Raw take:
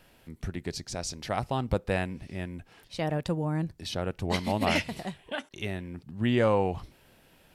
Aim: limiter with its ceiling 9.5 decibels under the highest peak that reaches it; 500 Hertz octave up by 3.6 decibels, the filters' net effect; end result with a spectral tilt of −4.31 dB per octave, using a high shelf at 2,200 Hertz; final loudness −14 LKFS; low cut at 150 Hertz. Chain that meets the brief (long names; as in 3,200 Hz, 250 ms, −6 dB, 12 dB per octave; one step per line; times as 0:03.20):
high-pass filter 150 Hz
parametric band 500 Hz +4 dB
high-shelf EQ 2,200 Hz +4.5 dB
level +19 dB
brickwall limiter 0 dBFS